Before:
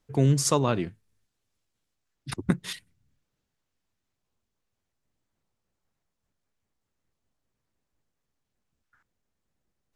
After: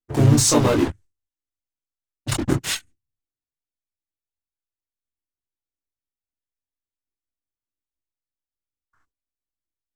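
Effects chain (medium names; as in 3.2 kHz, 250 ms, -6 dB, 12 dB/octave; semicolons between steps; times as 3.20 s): gate with hold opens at -55 dBFS; graphic EQ with 31 bands 200 Hz -12 dB, 315 Hz +10 dB, 8 kHz +9 dB; in parallel at -6.5 dB: fuzz box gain 39 dB, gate -38 dBFS; on the sum: chorus voices 6, 0.63 Hz, delay 22 ms, depth 1.8 ms; harmony voices -4 st -2 dB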